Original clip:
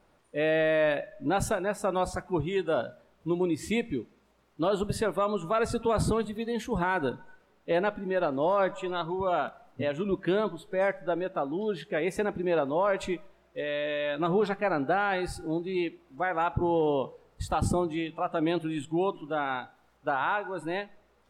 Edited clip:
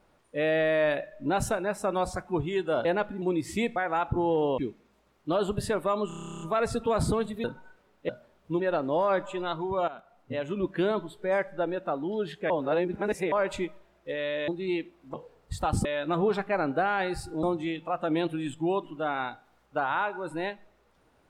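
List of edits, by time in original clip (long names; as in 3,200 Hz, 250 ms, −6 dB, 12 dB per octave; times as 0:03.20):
0:02.85–0:03.36: swap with 0:07.72–0:08.09
0:05.40: stutter 0.03 s, 12 plays
0:06.43–0:07.07: remove
0:09.37–0:10.36: fade in equal-power, from −15.5 dB
0:11.99–0:12.81: reverse
0:13.97–0:15.55: move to 0:17.74
0:16.21–0:17.03: move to 0:03.90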